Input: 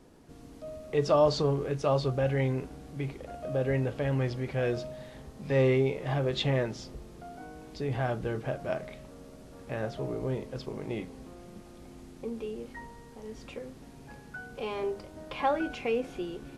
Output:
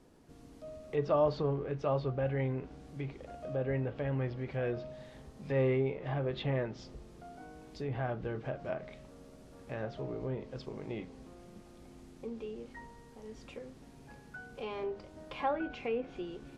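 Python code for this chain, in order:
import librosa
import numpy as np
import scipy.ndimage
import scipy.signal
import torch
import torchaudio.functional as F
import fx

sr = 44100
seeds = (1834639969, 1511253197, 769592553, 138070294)

y = fx.env_lowpass_down(x, sr, base_hz=2600.0, full_db=-27.0)
y = F.gain(torch.from_numpy(y), -5.0).numpy()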